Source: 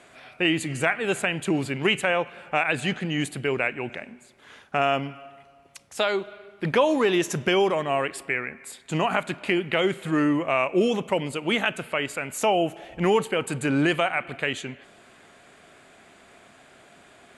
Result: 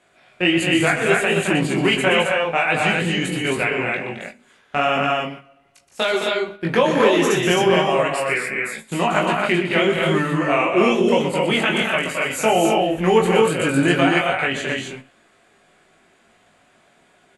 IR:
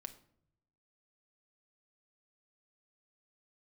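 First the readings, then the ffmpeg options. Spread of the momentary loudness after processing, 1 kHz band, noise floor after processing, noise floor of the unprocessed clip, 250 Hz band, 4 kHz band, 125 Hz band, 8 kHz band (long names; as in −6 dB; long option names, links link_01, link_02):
8 LU, +6.5 dB, −57 dBFS, −54 dBFS, +5.5 dB, +7.0 dB, +6.5 dB, +6.5 dB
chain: -filter_complex "[0:a]flanger=delay=19:depth=3.6:speed=1.4,aecho=1:1:122.4|215.7|265.3:0.355|0.501|0.708,agate=range=-11dB:threshold=-40dB:ratio=16:detection=peak,asplit=2[link_01][link_02];[link_02]adelay=18,volume=-7dB[link_03];[link_01][link_03]amix=inputs=2:normalize=0,asplit=2[link_04][link_05];[1:a]atrim=start_sample=2205,atrim=end_sample=3969[link_06];[link_05][link_06]afir=irnorm=-1:irlink=0,volume=5.5dB[link_07];[link_04][link_07]amix=inputs=2:normalize=0"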